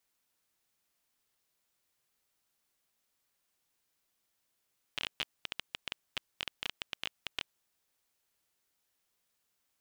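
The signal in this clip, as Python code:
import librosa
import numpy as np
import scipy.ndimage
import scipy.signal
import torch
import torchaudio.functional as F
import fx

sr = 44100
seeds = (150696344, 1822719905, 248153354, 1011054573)

y = fx.geiger_clicks(sr, seeds[0], length_s=2.64, per_s=13.0, level_db=-17.0)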